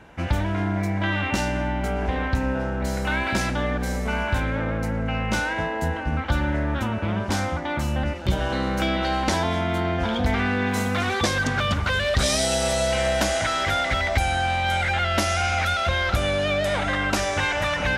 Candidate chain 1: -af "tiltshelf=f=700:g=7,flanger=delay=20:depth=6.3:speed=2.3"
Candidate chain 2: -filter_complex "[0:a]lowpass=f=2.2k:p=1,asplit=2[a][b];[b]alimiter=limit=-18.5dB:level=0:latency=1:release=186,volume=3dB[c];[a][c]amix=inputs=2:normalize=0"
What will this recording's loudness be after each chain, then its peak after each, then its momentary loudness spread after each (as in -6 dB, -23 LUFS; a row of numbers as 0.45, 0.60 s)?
-24.5, -19.0 LUFS; -8.5, -7.0 dBFS; 4, 3 LU